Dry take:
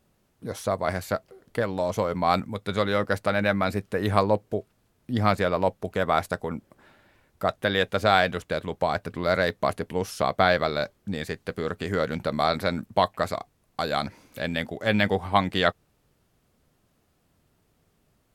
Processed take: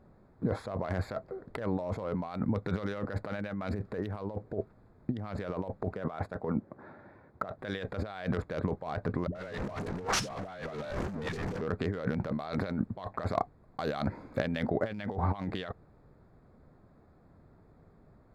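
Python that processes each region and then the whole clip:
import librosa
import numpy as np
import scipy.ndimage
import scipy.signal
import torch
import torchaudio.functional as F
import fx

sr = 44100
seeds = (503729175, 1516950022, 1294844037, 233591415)

y = fx.chain(x, sr, fx.highpass(hz=100.0, slope=12),
    fx.high_shelf(hz=3500.0, db=-6.5),
    fx.transient(attack_db=4, sustain_db=-1), at=(5.94, 7.59))
y = fx.chain(y, sr, fx.zero_step(step_db=-20.0),
    fx.lowpass(hz=7700.0, slope=12),
    fx.dispersion(late='highs', ms=87.0, hz=460.0), at=(9.27, 11.61))
y = fx.wiener(y, sr, points=15)
y = fx.high_shelf(y, sr, hz=5100.0, db=-9.0)
y = fx.over_compress(y, sr, threshold_db=-35.0, ratio=-1.0)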